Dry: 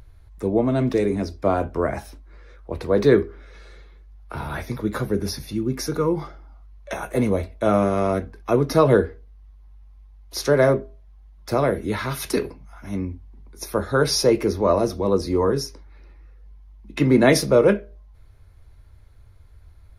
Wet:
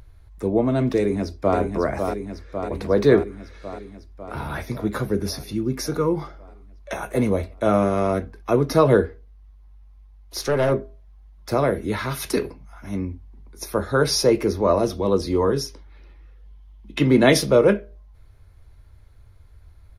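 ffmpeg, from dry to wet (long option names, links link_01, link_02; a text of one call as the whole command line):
ffmpeg -i in.wav -filter_complex "[0:a]asplit=2[link_01][link_02];[link_02]afade=type=in:start_time=0.97:duration=0.01,afade=type=out:start_time=1.58:duration=0.01,aecho=0:1:550|1100|1650|2200|2750|3300|3850|4400|4950|5500|6050|6600:0.530884|0.371619|0.260133|0.182093|0.127465|0.0892257|0.062458|0.0437206|0.0306044|0.0214231|0.0149962|0.0104973[link_03];[link_01][link_03]amix=inputs=2:normalize=0,asettb=1/sr,asplit=3[link_04][link_05][link_06];[link_04]atrim=end=9.064[link_07];[link_05]atrim=start=9.06:end=10.72,asetpts=PTS-STARTPTS,afade=type=in:duration=0.004:curve=qsin,afade=type=out:start_time=1.656:duration=0.004:curve=qsin,aeval=exprs='(tanh(5.01*val(0)+0.35)-tanh(0.35))/5.01':channel_layout=same[link_08];[link_06]atrim=start=10.716[link_09];[link_07][link_08]acrossfade=duration=0.004:curve1=hsin:curve2=qsin[link_10];[link_10][link_09]acrossfade=duration=0.004:curve1=qsin:curve2=hsin,asettb=1/sr,asplit=3[link_11][link_12][link_13];[link_11]atrim=end=14.834[link_14];[link_12]atrim=start=14.83:end=17.57,asetpts=PTS-STARTPTS,afade=type=in:duration=0.004:curve=qsin,afade=type=out:start_time=2.736:duration=0.004:curve=qsin,equalizer=frequency=3200:width=3.6:gain=9[link_15];[link_13]atrim=start=17.566[link_16];[link_14][link_15]acrossfade=duration=0.004:curve1=hsin:curve2=qsin[link_17];[link_17][link_16]acrossfade=duration=0.004:curve1=qsin:curve2=hsin" out.wav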